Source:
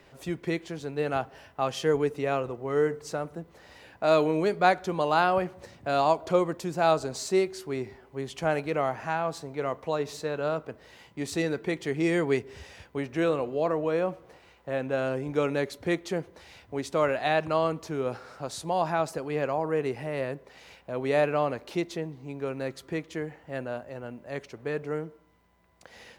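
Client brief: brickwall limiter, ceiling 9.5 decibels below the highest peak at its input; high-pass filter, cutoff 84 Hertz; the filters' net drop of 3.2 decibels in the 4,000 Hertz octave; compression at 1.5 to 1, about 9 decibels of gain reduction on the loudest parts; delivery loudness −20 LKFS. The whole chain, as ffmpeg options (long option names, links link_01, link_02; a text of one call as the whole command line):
ffmpeg -i in.wav -af "highpass=84,equalizer=frequency=4000:width_type=o:gain=-4,acompressor=threshold=-43dB:ratio=1.5,volume=19dB,alimiter=limit=-9dB:level=0:latency=1" out.wav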